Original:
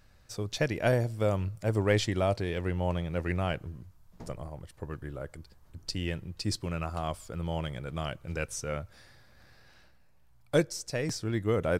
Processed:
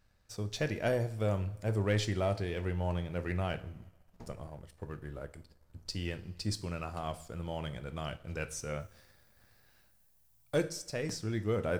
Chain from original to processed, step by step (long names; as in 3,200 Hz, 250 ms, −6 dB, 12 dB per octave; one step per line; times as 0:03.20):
coupled-rooms reverb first 0.46 s, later 2 s, from −18 dB, DRR 9.5 dB
leveller curve on the samples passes 1
0:08.79–0:10.59: background noise violet −63 dBFS
level −8 dB